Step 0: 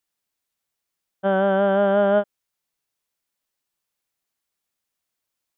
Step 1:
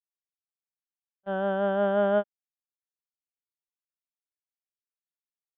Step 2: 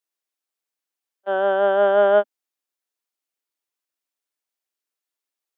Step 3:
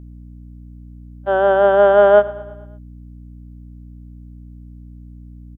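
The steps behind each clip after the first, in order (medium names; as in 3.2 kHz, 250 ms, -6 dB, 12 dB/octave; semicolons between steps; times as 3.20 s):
gate -18 dBFS, range -41 dB; trim -5 dB
steep high-pass 250 Hz 48 dB/octave; trim +8.5 dB
peaking EQ 3.2 kHz -4 dB 1.4 oct; hum 60 Hz, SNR 18 dB; feedback delay 112 ms, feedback 56%, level -19 dB; trim +5.5 dB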